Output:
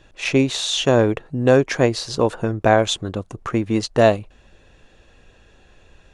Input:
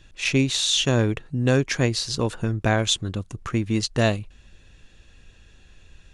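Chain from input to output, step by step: bell 640 Hz +12.5 dB 2.5 oct; gain -2.5 dB

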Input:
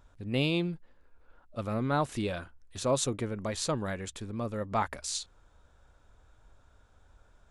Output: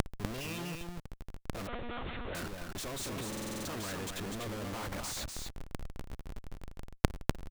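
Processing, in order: bin magnitudes rounded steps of 30 dB; 3.02–3.87 notch 440 Hz, Q 12; sample leveller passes 5; Schmitt trigger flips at -48.5 dBFS; flipped gate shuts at -36 dBFS, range -28 dB; echo 0.247 s -4.5 dB; 1.67–2.35 monotone LPC vocoder at 8 kHz 240 Hz; stuck buffer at 3.28, samples 2048, times 7; gain +12 dB

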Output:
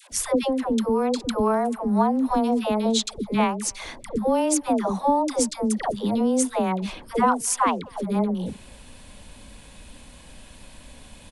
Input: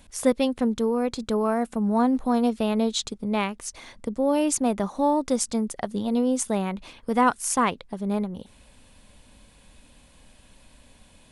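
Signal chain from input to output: dynamic EQ 910 Hz, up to +6 dB, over -37 dBFS, Q 1.5; compressor 3:1, threshold -29 dBFS, peak gain reduction 13.5 dB; dispersion lows, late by 0.116 s, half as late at 590 Hz; speakerphone echo 0.25 s, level -27 dB; gain +8 dB

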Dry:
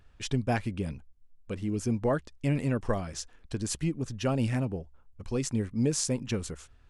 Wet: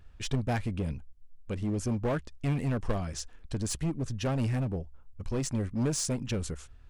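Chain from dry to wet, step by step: low shelf 130 Hz +7 dB; in parallel at -4 dB: wavefolder -27.5 dBFS; on the sum: gain -4.5 dB

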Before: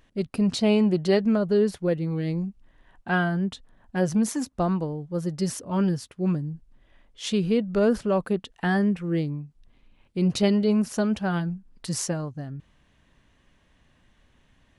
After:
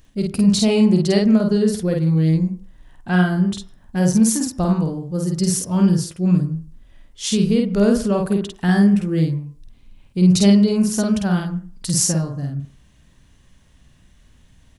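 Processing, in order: tone controls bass +9 dB, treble +12 dB; doubler 50 ms -2.5 dB; on a send: reverb RT60 0.45 s, pre-delay 93 ms, DRR 16 dB

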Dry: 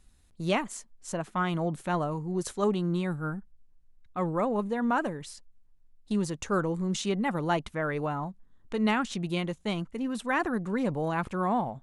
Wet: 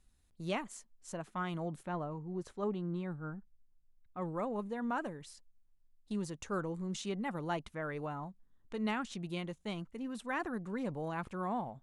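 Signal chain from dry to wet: 1.83–4.22 LPF 1800 Hz 6 dB/oct; gain -9 dB

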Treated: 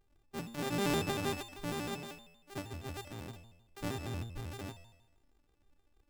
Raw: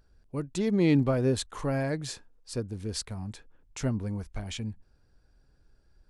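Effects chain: sample sorter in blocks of 128 samples; resonator 100 Hz, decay 1 s, harmonics all, mix 80%; shaped vibrato square 6.4 Hz, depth 250 cents; gain +2.5 dB

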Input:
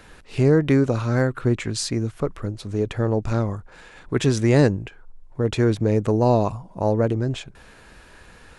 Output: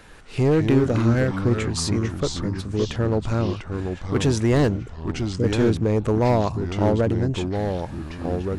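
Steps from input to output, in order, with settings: overloaded stage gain 13.5 dB; 4.78–5.44 inverse Chebyshev band-stop 940–4100 Hz; echoes that change speed 0.146 s, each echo -3 st, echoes 3, each echo -6 dB

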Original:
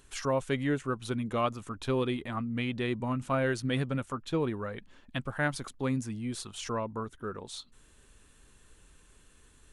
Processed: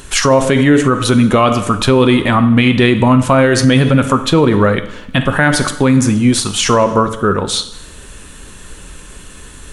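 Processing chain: on a send at -8.5 dB: reverb RT60 0.85 s, pre-delay 3 ms; on the sum: maximiser +25.5 dB; gain -1 dB

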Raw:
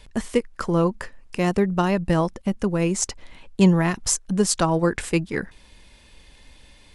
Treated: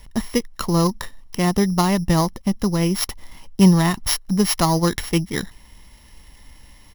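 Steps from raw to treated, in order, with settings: sample sorter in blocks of 8 samples; comb 1 ms, depth 41%; gain +2 dB

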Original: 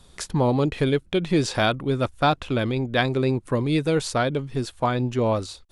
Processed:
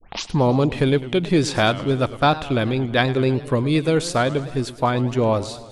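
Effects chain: tape start at the beginning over 0.32 s; warbling echo 0.107 s, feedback 65%, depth 181 cents, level -16.5 dB; gain +3 dB

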